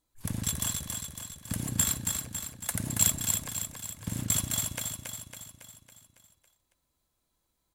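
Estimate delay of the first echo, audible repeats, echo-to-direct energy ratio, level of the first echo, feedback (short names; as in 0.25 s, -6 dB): 0.277 s, 6, -3.5 dB, -5.0 dB, 55%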